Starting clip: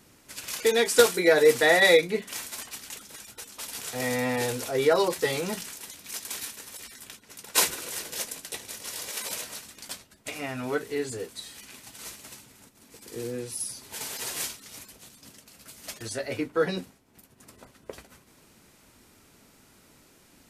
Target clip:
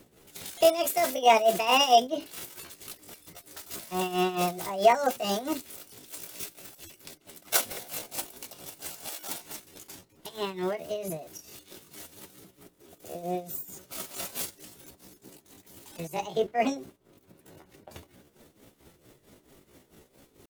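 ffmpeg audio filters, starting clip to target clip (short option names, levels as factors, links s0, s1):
-filter_complex "[0:a]acrossover=split=400[s0][s1];[s0]acontrast=72[s2];[s2][s1]amix=inputs=2:normalize=0,tremolo=f=4.5:d=0.78,asetrate=64194,aresample=44100,atempo=0.686977"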